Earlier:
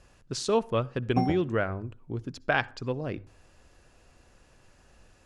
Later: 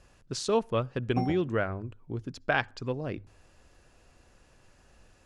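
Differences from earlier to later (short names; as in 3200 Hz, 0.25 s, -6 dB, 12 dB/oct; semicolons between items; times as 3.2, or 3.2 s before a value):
speech: send -8.5 dB; background -4.5 dB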